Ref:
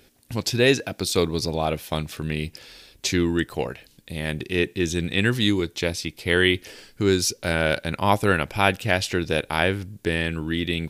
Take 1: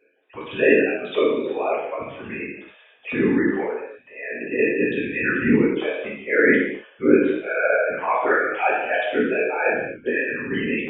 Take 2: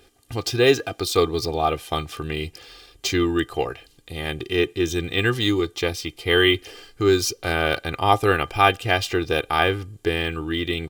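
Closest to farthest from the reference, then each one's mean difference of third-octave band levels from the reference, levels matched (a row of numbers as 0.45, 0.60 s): 2, 1; 3.0, 14.0 dB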